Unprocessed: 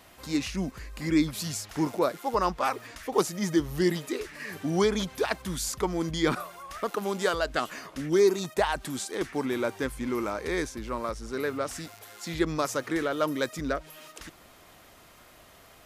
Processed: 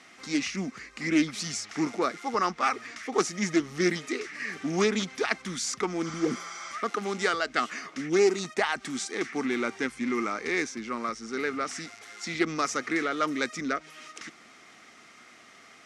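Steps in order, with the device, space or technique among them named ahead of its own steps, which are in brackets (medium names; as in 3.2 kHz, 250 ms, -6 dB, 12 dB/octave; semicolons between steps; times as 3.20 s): peaking EQ 1 kHz -9.5 dB 0.27 oct; spectral replace 6.08–6.70 s, 580–8400 Hz before; full-range speaker at full volume (loudspeaker Doppler distortion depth 0.18 ms; cabinet simulation 210–8600 Hz, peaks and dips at 230 Hz +6 dB, 570 Hz -8 dB, 1.2 kHz +7 dB, 2.1 kHz +9 dB, 5.7 kHz +6 dB)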